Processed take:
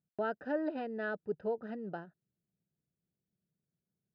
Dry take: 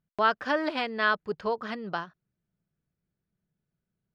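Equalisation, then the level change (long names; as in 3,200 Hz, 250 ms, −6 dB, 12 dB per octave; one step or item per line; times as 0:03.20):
moving average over 40 samples
high-pass filter 81 Hz
low-shelf EQ 260 Hz −6 dB
0.0 dB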